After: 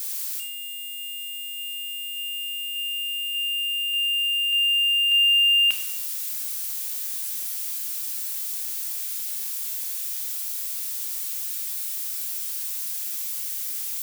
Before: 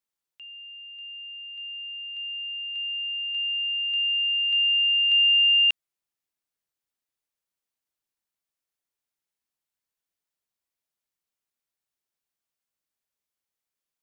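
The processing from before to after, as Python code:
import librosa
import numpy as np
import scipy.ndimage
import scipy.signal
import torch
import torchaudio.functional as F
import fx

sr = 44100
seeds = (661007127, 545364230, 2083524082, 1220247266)

y = x + 0.5 * 10.0 ** (-26.5 / 20.0) * np.diff(np.sign(x), prepend=np.sign(x[:1]))
y = fx.room_shoebox(y, sr, seeds[0], volume_m3=250.0, walls='mixed', distance_m=0.8)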